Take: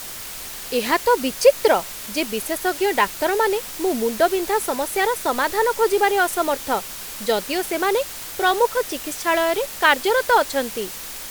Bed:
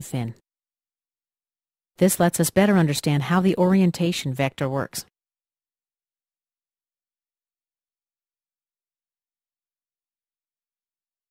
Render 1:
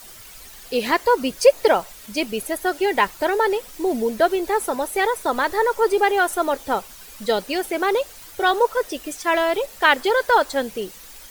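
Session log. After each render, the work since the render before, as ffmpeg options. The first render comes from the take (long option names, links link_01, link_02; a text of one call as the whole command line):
ffmpeg -i in.wav -af "afftdn=noise_reduction=11:noise_floor=-34" out.wav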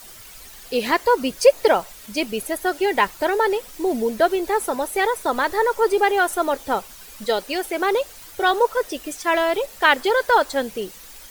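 ffmpeg -i in.wav -filter_complex "[0:a]asettb=1/sr,asplit=3[link_01][link_02][link_03];[link_01]atrim=end=7.244[link_04];[link_02]atrim=start=7.24:end=7.79,asetpts=PTS-STARTPTS,afade=type=in:duration=0.004:curve=qsin,afade=type=out:start_time=0.546:duration=0.004:curve=qsin,equalizer=frequency=150:width=1.2:gain=-10[link_05];[link_03]atrim=start=7.786[link_06];[link_04][link_05]acrossfade=duration=0.004:curve1=hsin:curve2=qsin[link_07];[link_07][link_06]acrossfade=duration=0.004:curve1=qsin:curve2=hsin" out.wav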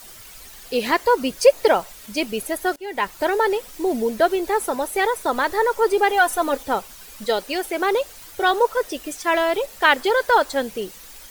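ffmpeg -i in.wav -filter_complex "[0:a]asettb=1/sr,asplit=3[link_01][link_02][link_03];[link_01]atrim=end=6.094[link_04];[link_02]atrim=start=6.09:end=6.63,asetpts=PTS-STARTPTS,afade=type=in:duration=0.004:curve=qsin,afade=type=out:start_time=0.536:duration=0.004:curve=qsin,aecho=1:1:4:0.65,atrim=end_sample=23814[link_05];[link_03]atrim=start=6.626[link_06];[link_04][link_05]acrossfade=duration=0.004:curve1=hsin:curve2=qsin[link_07];[link_07][link_06]acrossfade=duration=0.004:curve1=qsin:curve2=hsin,asplit=2[link_08][link_09];[link_08]atrim=end=2.76,asetpts=PTS-STARTPTS,afade=type=out:start_time=2.756:duration=0.004:curve=hsin:silence=0.0630957[link_10];[link_09]atrim=start=2.76,asetpts=PTS-STARTPTS,afade=type=in:duration=0.46:silence=0.0630957[link_11];[link_10][link_11]concat=n=2:v=0:a=1" out.wav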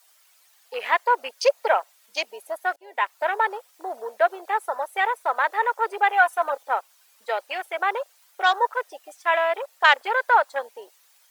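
ffmpeg -i in.wav -af "afwtdn=0.0316,highpass=frequency=630:width=0.5412,highpass=frequency=630:width=1.3066" out.wav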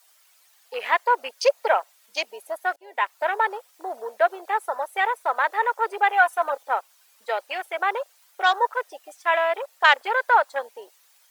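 ffmpeg -i in.wav -af anull out.wav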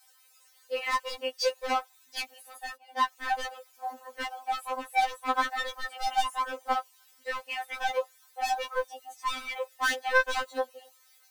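ffmpeg -i in.wav -af "asoftclip=type=hard:threshold=-22.5dB,afftfilt=real='re*3.46*eq(mod(b,12),0)':imag='im*3.46*eq(mod(b,12),0)':win_size=2048:overlap=0.75" out.wav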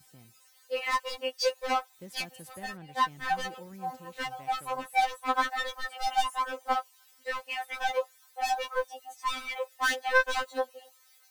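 ffmpeg -i in.wav -i bed.wav -filter_complex "[1:a]volume=-29dB[link_01];[0:a][link_01]amix=inputs=2:normalize=0" out.wav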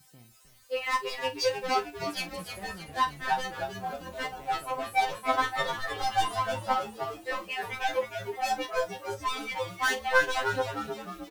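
ffmpeg -i in.wav -filter_complex "[0:a]asplit=2[link_01][link_02];[link_02]adelay=41,volume=-12dB[link_03];[link_01][link_03]amix=inputs=2:normalize=0,asplit=7[link_04][link_05][link_06][link_07][link_08][link_09][link_10];[link_05]adelay=309,afreqshift=-110,volume=-7.5dB[link_11];[link_06]adelay=618,afreqshift=-220,volume=-13.3dB[link_12];[link_07]adelay=927,afreqshift=-330,volume=-19.2dB[link_13];[link_08]adelay=1236,afreqshift=-440,volume=-25dB[link_14];[link_09]adelay=1545,afreqshift=-550,volume=-30.9dB[link_15];[link_10]adelay=1854,afreqshift=-660,volume=-36.7dB[link_16];[link_04][link_11][link_12][link_13][link_14][link_15][link_16]amix=inputs=7:normalize=0" out.wav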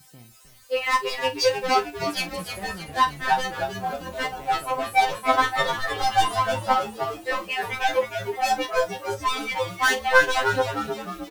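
ffmpeg -i in.wav -af "volume=6.5dB" out.wav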